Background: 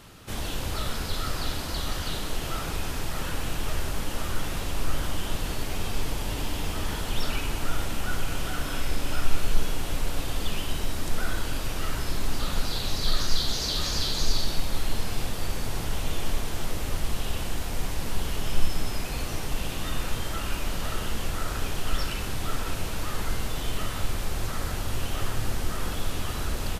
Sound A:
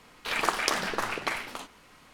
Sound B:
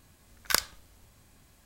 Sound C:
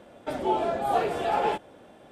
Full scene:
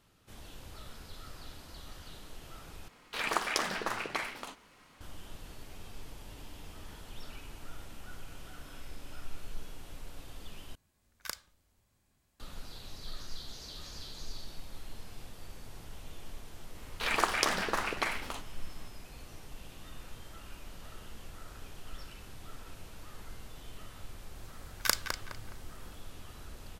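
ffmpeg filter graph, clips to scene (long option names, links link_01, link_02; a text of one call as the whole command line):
ffmpeg -i bed.wav -i cue0.wav -i cue1.wav -filter_complex "[1:a]asplit=2[link_01][link_02];[2:a]asplit=2[link_03][link_04];[0:a]volume=-18dB[link_05];[link_04]asplit=2[link_06][link_07];[link_07]adelay=208,lowpass=frequency=3400:poles=1,volume=-5dB,asplit=2[link_08][link_09];[link_09]adelay=208,lowpass=frequency=3400:poles=1,volume=0.36,asplit=2[link_10][link_11];[link_11]adelay=208,lowpass=frequency=3400:poles=1,volume=0.36,asplit=2[link_12][link_13];[link_13]adelay=208,lowpass=frequency=3400:poles=1,volume=0.36[link_14];[link_06][link_08][link_10][link_12][link_14]amix=inputs=5:normalize=0[link_15];[link_05]asplit=3[link_16][link_17][link_18];[link_16]atrim=end=2.884[link_19];[link_01]atrim=end=2.13,asetpts=PTS-STARTPTS,volume=-4.5dB[link_20];[link_17]atrim=start=5.006:end=10.754[link_21];[link_03]atrim=end=1.65,asetpts=PTS-STARTPTS,volume=-14.5dB[link_22];[link_18]atrim=start=12.396[link_23];[link_02]atrim=end=2.13,asetpts=PTS-STARTPTS,volume=-2dB,afade=type=in:duration=0.004:curve=hsin,afade=type=out:start_time=2.126:duration=0.004:curve=hsin,adelay=16750[link_24];[link_15]atrim=end=1.65,asetpts=PTS-STARTPTS,volume=-3dB,afade=type=in:duration=0.004:curve=hsin,afade=type=out:start_time=1.646:duration=0.004:curve=hsin,adelay=24350[link_25];[link_19][link_20]acrossfade=duration=0.004:curve1=hsin:curve2=hsin[link_26];[link_26][link_21]acrossfade=duration=0.004:curve1=hsin:curve2=hsin[link_27];[link_27][link_22]acrossfade=duration=0.004:curve1=hsin:curve2=hsin[link_28];[link_28][link_23]acrossfade=duration=0.004:curve1=hsin:curve2=hsin[link_29];[link_29][link_24][link_25]amix=inputs=3:normalize=0" out.wav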